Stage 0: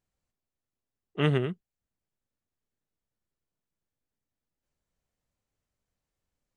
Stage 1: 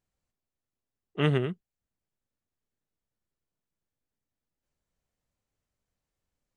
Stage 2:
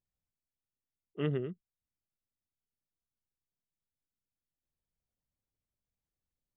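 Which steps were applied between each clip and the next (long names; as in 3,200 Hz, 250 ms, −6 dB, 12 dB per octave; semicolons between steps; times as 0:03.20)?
no processing that can be heard
spectral envelope exaggerated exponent 1.5; level −7.5 dB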